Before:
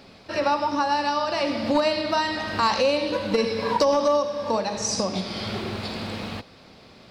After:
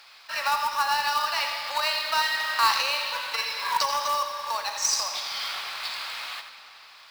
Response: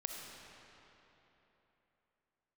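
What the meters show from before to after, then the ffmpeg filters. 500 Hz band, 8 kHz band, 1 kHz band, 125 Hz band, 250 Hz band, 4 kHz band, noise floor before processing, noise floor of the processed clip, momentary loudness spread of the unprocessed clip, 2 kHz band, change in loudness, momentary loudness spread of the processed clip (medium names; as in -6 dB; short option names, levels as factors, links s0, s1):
-16.0 dB, +3.5 dB, -0.5 dB, under -20 dB, under -25 dB, +3.5 dB, -50 dBFS, -50 dBFS, 10 LU, +3.5 dB, -1.5 dB, 10 LU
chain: -filter_complex "[0:a]highpass=f=1000:w=0.5412,highpass=f=1000:w=1.3066,acrusher=bits=3:mode=log:mix=0:aa=0.000001,asplit=2[s0][s1];[1:a]atrim=start_sample=2205,adelay=85[s2];[s1][s2]afir=irnorm=-1:irlink=0,volume=0.422[s3];[s0][s3]amix=inputs=2:normalize=0,volume=1.33"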